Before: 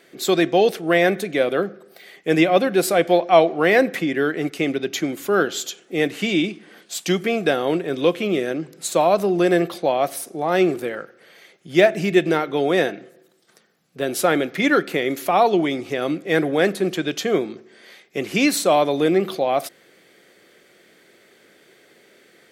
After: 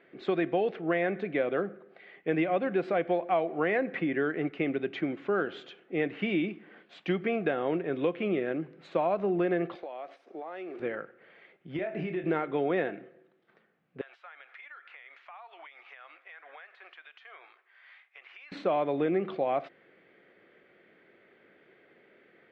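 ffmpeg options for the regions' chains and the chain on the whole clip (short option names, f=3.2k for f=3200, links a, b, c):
-filter_complex "[0:a]asettb=1/sr,asplit=3[a][b][c];[a]atrim=end=9.754[d];[b]atrim=start=9.75:end=10.8,asetpts=PTS-STARTPTS,afade=t=in:d=0.004:c=qsin,afade=t=out:st=1.046:d=0.004:c=qsin,highpass=f=170:w=0.5412,highpass=f=170:w=1.3066,bass=f=250:g=-15,treble=f=4k:g=9,acompressor=threshold=-29dB:ratio=16:attack=3.2:release=140:knee=1:detection=peak[e];[c]atrim=start=10.796[f];[d][e]acrossfade=d=0.004:c1=hsin:c2=qsin[g];[g][f]acrossfade=d=0.004:c1=qsin:c2=hsin,asettb=1/sr,asplit=3[h][i][j];[h]atrim=end=11.764[k];[i]atrim=start=11.76:end=12.24,asetpts=PTS-STARTPTS,afade=t=in:d=0.004:c=qsin,afade=t=out:st=0.476:d=0.004:c=qsin,acompressor=threshold=-23dB:ratio=16:attack=3.2:release=140:knee=1:detection=peak,asplit=2[l][m];[m]adelay=27,volume=-6dB[n];[l][n]amix=inputs=2:normalize=0,atrim=end_sample=21168[o];[j]atrim=start=12.236[p];[k][o]acrossfade=d=0.004:c1=hsin:c2=qsin[q];[q][p]acrossfade=d=0.004:c1=qsin:c2=hsin,asettb=1/sr,asplit=3[r][s][t];[r]atrim=end=14.014[u];[s]atrim=start=14.01:end=18.52,asetpts=PTS-STARTPTS,afade=t=in:d=0.004:c=qsin,afade=t=out:st=4.506:d=0.004:c=qsin,highpass=f=930:w=0.5412,highpass=f=930:w=1.3066,acompressor=threshold=-37dB:ratio=16:attack=3.2:release=140:knee=1:detection=peak[v];[t]atrim=start=18.516[w];[u][v]acrossfade=d=0.004:c1=hsin:c2=qsin[x];[x][w]acrossfade=d=0.004:c1=qsin:c2=hsin,lowpass=f=2.6k:w=0.5412,lowpass=f=2.6k:w=1.3066,acompressor=threshold=-17dB:ratio=6,volume=-6.5dB"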